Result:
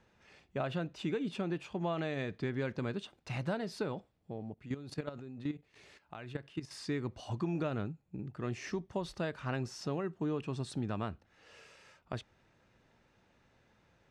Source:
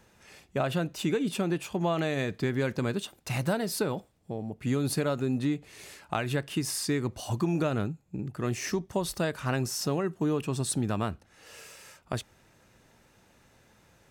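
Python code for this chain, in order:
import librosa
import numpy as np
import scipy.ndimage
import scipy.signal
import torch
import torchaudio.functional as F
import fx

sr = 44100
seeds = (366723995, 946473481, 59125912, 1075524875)

y = scipy.signal.sosfilt(scipy.signal.butter(2, 4300.0, 'lowpass', fs=sr, output='sos'), x)
y = fx.level_steps(y, sr, step_db=13, at=(4.54, 6.71))
y = F.gain(torch.from_numpy(y), -7.0).numpy()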